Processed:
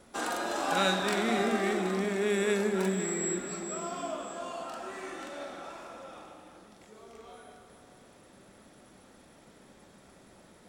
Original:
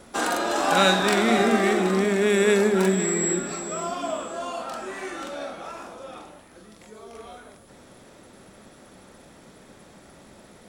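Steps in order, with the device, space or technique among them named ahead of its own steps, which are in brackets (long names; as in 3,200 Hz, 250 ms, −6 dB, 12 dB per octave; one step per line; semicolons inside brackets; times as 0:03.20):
compressed reverb return (on a send at −3.5 dB: convolution reverb RT60 2.6 s, pre-delay 85 ms + downward compressor, threshold −26 dBFS, peak gain reduction 11 dB)
on the sum: level −8.5 dB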